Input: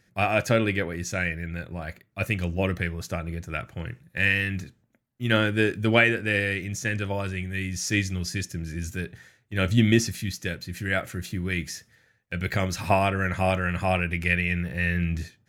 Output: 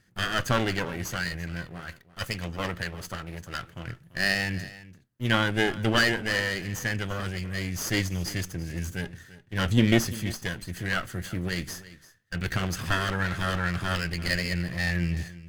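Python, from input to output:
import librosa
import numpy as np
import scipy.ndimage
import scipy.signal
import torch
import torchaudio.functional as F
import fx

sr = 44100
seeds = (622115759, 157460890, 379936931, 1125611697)

y = fx.lower_of_two(x, sr, delay_ms=0.63)
y = fx.low_shelf(y, sr, hz=360.0, db=-6.0, at=(1.66, 3.88))
y = y + 10.0 ** (-17.5 / 20.0) * np.pad(y, (int(340 * sr / 1000.0), 0))[:len(y)]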